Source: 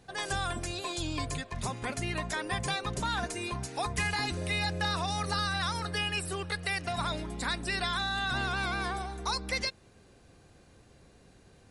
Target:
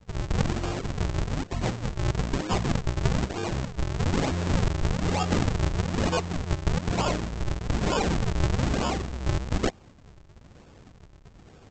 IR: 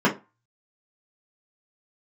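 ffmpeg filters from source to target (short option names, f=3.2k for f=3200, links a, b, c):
-af "adynamicequalizer=threshold=0.00178:dfrequency=470:dqfactor=2.1:tfrequency=470:tqfactor=2.1:attack=5:release=100:ratio=0.375:range=3.5:mode=cutabove:tftype=bell,aresample=16000,acrusher=samples=38:mix=1:aa=0.000001:lfo=1:lforange=60.8:lforate=1.1,aresample=44100,volume=7.5dB"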